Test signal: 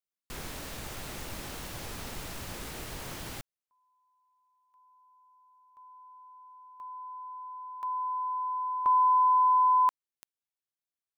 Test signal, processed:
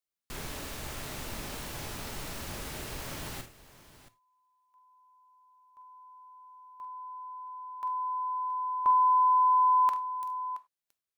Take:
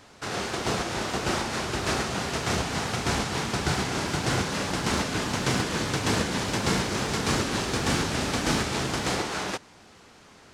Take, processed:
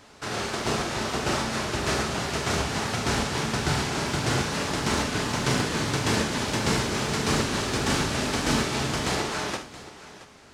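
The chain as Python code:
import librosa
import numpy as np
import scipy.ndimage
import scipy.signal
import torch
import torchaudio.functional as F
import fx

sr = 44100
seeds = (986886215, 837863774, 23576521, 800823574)

p1 = x + fx.echo_multitap(x, sr, ms=(45, 72, 674), db=(-9.0, -17.0, -16.0), dry=0)
y = fx.rev_gated(p1, sr, seeds[0], gate_ms=120, shape='falling', drr_db=11.5)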